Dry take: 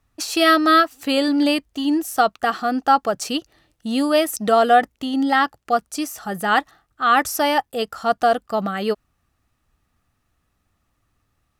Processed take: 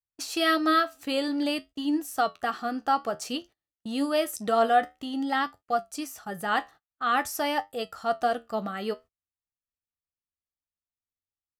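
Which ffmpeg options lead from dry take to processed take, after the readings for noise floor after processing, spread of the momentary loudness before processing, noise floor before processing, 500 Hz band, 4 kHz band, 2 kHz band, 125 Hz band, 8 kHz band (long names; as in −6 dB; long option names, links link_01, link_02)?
below −85 dBFS, 10 LU, −71 dBFS, −8.0 dB, −8.0 dB, −8.5 dB, can't be measured, −8.5 dB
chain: -af "flanger=delay=9.9:depth=4:regen=66:speed=0.52:shape=triangular,agate=range=-29dB:threshold=-42dB:ratio=16:detection=peak,volume=-4dB"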